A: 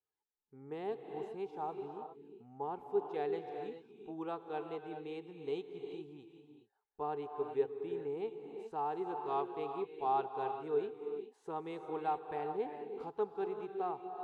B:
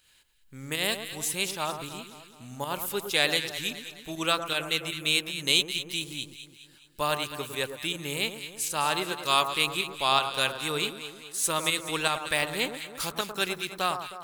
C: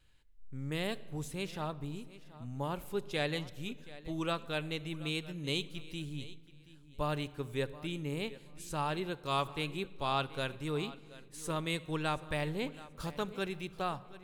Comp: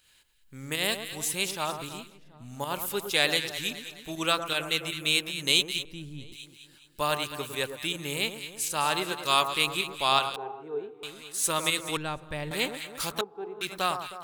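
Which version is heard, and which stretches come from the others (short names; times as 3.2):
B
2.08–2.48 from C, crossfade 0.24 s
5.85–6.32 from C
10.36–11.03 from A
11.97–12.51 from C
13.21–13.61 from A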